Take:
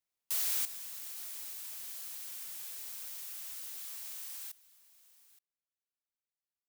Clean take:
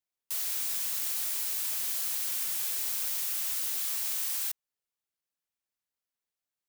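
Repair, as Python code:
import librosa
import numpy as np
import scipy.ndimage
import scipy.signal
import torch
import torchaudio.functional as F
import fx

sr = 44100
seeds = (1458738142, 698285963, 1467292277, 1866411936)

y = fx.fix_echo_inverse(x, sr, delay_ms=872, level_db=-19.5)
y = fx.fix_level(y, sr, at_s=0.65, step_db=12.0)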